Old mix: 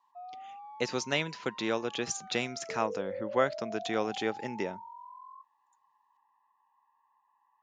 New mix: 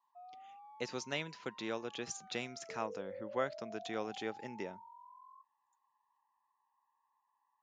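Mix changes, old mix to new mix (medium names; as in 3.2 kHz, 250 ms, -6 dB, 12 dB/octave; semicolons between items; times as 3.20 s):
speech -8.5 dB; background -8.5 dB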